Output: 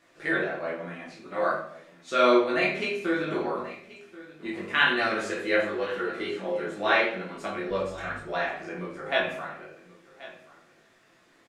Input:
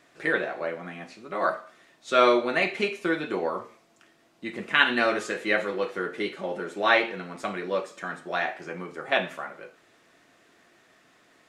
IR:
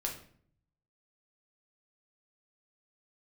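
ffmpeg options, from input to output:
-filter_complex "[0:a]asettb=1/sr,asplit=3[link_01][link_02][link_03];[link_01]atrim=end=7.694[link_04];[link_02]atrim=start=7.69:end=8.2,asetpts=PTS-STARTPTS,afade=type=in:duration=0.004:curve=qsin,afade=type=out:start_time=0.506:duration=0.004:curve=qsin,aeval=exprs='val(0)+0.00501*(sin(2*PI*50*n/s)+sin(2*PI*2*50*n/s)/2+sin(2*PI*3*50*n/s)/3+sin(2*PI*4*50*n/s)/4+sin(2*PI*5*50*n/s)/5)':channel_layout=same[link_05];[link_03]atrim=start=8.196[link_06];[link_04][link_05]acrossfade=duration=0.004:curve1=hsin:curve2=qsin[link_07];[link_07][link_06]acrossfade=duration=0.004:curve1=qsin:curve2=hsin,flanger=delay=18.5:depth=3.3:speed=1.2,aecho=1:1:1082:0.119[link_08];[1:a]atrim=start_sample=2205[link_09];[link_08][link_09]afir=irnorm=-1:irlink=0"

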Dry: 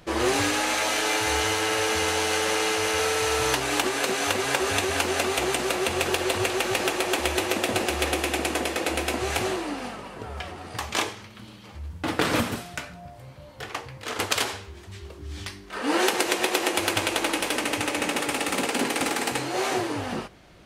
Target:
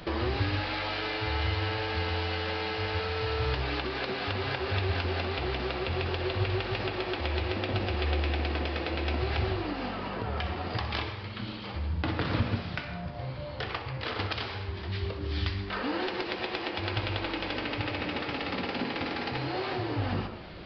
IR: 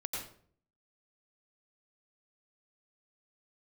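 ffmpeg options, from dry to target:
-filter_complex "[0:a]bandreject=frequency=70.44:width_type=h:width=4,bandreject=frequency=140.88:width_type=h:width=4,bandreject=frequency=211.32:width_type=h:width=4,bandreject=frequency=281.76:width_type=h:width=4,bandreject=frequency=352.2:width_type=h:width=4,bandreject=frequency=422.64:width_type=h:width=4,bandreject=frequency=493.08:width_type=h:width=4,bandreject=frequency=563.52:width_type=h:width=4,bandreject=frequency=633.96:width_type=h:width=4,bandreject=frequency=704.4:width_type=h:width=4,bandreject=frequency=774.84:width_type=h:width=4,bandreject=frequency=845.28:width_type=h:width=4,bandreject=frequency=915.72:width_type=h:width=4,bandreject=frequency=986.16:width_type=h:width=4,bandreject=frequency=1056.6:width_type=h:width=4,bandreject=frequency=1127.04:width_type=h:width=4,bandreject=frequency=1197.48:width_type=h:width=4,bandreject=frequency=1267.92:width_type=h:width=4,bandreject=frequency=1338.36:width_type=h:width=4,bandreject=frequency=1408.8:width_type=h:width=4,bandreject=frequency=1479.24:width_type=h:width=4,bandreject=frequency=1549.68:width_type=h:width=4,bandreject=frequency=1620.12:width_type=h:width=4,bandreject=frequency=1690.56:width_type=h:width=4,bandreject=frequency=1761:width_type=h:width=4,bandreject=frequency=1831.44:width_type=h:width=4,bandreject=frequency=1901.88:width_type=h:width=4,bandreject=frequency=1972.32:width_type=h:width=4,bandreject=frequency=2042.76:width_type=h:width=4,bandreject=frequency=2113.2:width_type=h:width=4,bandreject=frequency=2183.64:width_type=h:width=4,bandreject=frequency=2254.08:width_type=h:width=4,bandreject=frequency=2324.52:width_type=h:width=4,bandreject=frequency=2394.96:width_type=h:width=4,bandreject=frequency=2465.4:width_type=h:width=4,bandreject=frequency=2535.84:width_type=h:width=4,bandreject=frequency=2606.28:width_type=h:width=4,bandreject=frequency=2676.72:width_type=h:width=4,bandreject=frequency=2747.16:width_type=h:width=4,acrossover=split=130[link_01][link_02];[link_02]acompressor=threshold=-40dB:ratio=5[link_03];[link_01][link_03]amix=inputs=2:normalize=0,asplit=2[link_04][link_05];[1:a]atrim=start_sample=2205,asetrate=74970,aresample=44100,adelay=63[link_06];[link_05][link_06]afir=irnorm=-1:irlink=0,volume=-7dB[link_07];[link_04][link_07]amix=inputs=2:normalize=0,aresample=11025,aresample=44100,volume=7.5dB"

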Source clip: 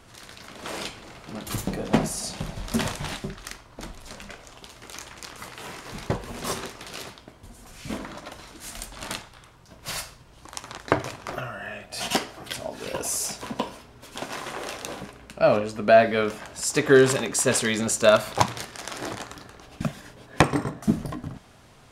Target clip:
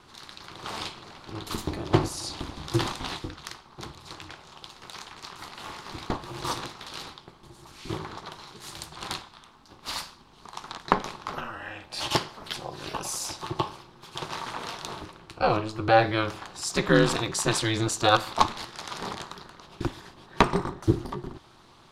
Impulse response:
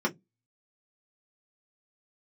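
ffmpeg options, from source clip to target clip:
-af "equalizer=frequency=250:width_type=o:width=1:gain=11,equalizer=frequency=500:width_type=o:width=1:gain=-5,equalizer=frequency=1000:width_type=o:width=1:gain=12,equalizer=frequency=4000:width_type=o:width=1:gain=11,aeval=exprs='val(0)*sin(2*PI*110*n/s)':channel_layout=same,volume=-5.5dB"

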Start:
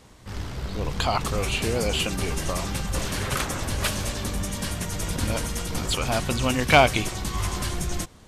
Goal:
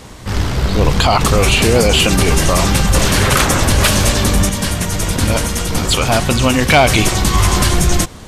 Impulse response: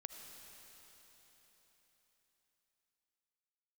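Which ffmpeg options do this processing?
-filter_complex "[0:a]asettb=1/sr,asplit=3[link_01][link_02][link_03];[link_01]atrim=end=4.494[link_04];[link_02]atrim=start=4.49:end=6.7,asetpts=PTS-STARTPTS,afade=type=in:duration=0.004:curve=qsin,afade=type=out:start_time=2.206:duration=0.004:curve=qsin,flanger=delay=8.6:depth=3.2:regen=-81:speed=1.7:shape=triangular[link_05];[link_03]atrim=start=6.696[link_06];[link_04][link_05]acrossfade=duration=0.004:curve1=hsin:curve2=qsin[link_07];[link_07][link_06]acrossfade=duration=0.004:curve1=qsin:curve2=hsin,asoftclip=type=tanh:threshold=-10dB,alimiter=level_in=17.5dB:limit=-1dB:release=50:level=0:latency=1,volume=-1.5dB"

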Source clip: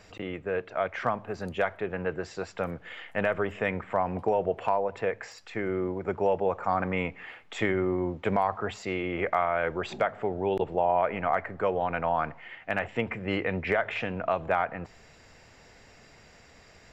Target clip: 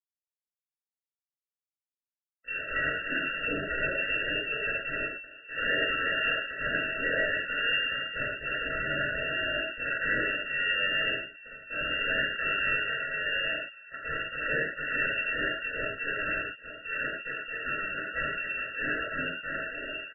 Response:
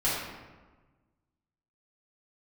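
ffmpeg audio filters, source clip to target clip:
-filter_complex "[0:a]areverse,asplit=2[link_01][link_02];[link_02]acompressor=threshold=-34dB:ratio=20,volume=-1dB[link_03];[link_01][link_03]amix=inputs=2:normalize=0,acrusher=bits=4:mix=0:aa=0.000001,asplit=2[link_04][link_05];[link_05]adelay=705,lowpass=frequency=1100:poles=1,volume=-17dB,asplit=2[link_06][link_07];[link_07]adelay=705,lowpass=frequency=1100:poles=1,volume=0.29,asplit=2[link_08][link_09];[link_09]adelay=705,lowpass=frequency=1100:poles=1,volume=0.29[link_10];[link_04][link_06][link_08][link_10]amix=inputs=4:normalize=0,atempo=0.84,adynamicsmooth=sensitivity=1.5:basefreq=1600,aresample=8000,aeval=exprs='0.0668*(abs(mod(val(0)/0.0668+3,4)-2)-1)':channel_layout=same,aresample=44100,lowpass=frequency=2400:width_type=q:width=0.5098,lowpass=frequency=2400:width_type=q:width=0.6013,lowpass=frequency=2400:width_type=q:width=0.9,lowpass=frequency=2400:width_type=q:width=2.563,afreqshift=-2800[link_11];[1:a]atrim=start_sample=2205,afade=type=out:start_time=0.21:duration=0.01,atrim=end_sample=9702[link_12];[link_11][link_12]afir=irnorm=-1:irlink=0,afftfilt=real='re*eq(mod(floor(b*sr/1024/660),2),0)':imag='im*eq(mod(floor(b*sr/1024/660),2),0)':win_size=1024:overlap=0.75,volume=-2.5dB"

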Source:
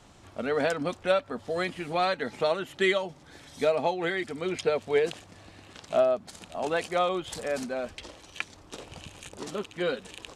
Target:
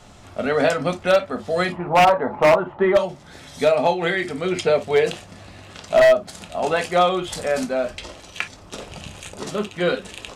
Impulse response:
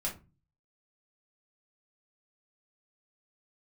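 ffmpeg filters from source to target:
-filter_complex "[0:a]asettb=1/sr,asplit=3[link_01][link_02][link_03];[link_01]atrim=end=1.724[link_04];[link_02]atrim=start=1.72:end=2.97,asetpts=PTS-STARTPTS,afade=type=in:duration=0.004:curve=qsin,afade=type=out:start_time=1.246:duration=0.004:curve=qsin,lowpass=frequency=970:width_type=q:width=4.9[link_05];[link_03]atrim=start=2.966[link_06];[link_04][link_05]acrossfade=duration=0.004:curve1=hsin:curve2=qsin[link_07];[link_07][link_06]acrossfade=duration=0.004:curve1=qsin:curve2=hsin,asplit=2[link_08][link_09];[1:a]atrim=start_sample=2205,atrim=end_sample=3087[link_10];[link_09][link_10]afir=irnorm=-1:irlink=0,volume=-3dB[link_11];[link_08][link_11]amix=inputs=2:normalize=0,aeval=exprs='0.282*(abs(mod(val(0)/0.282+3,4)-2)-1)':channel_layout=same,volume=3.5dB"

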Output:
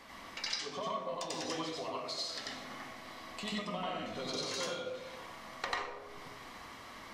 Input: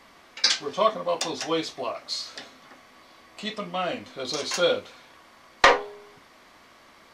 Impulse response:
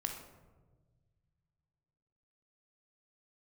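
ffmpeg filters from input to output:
-filter_complex "[0:a]acompressor=threshold=-39dB:ratio=6,asplit=2[link_01][link_02];[1:a]atrim=start_sample=2205,adelay=92[link_03];[link_02][link_03]afir=irnorm=-1:irlink=0,volume=3dB[link_04];[link_01][link_04]amix=inputs=2:normalize=0,volume=-1.5dB"

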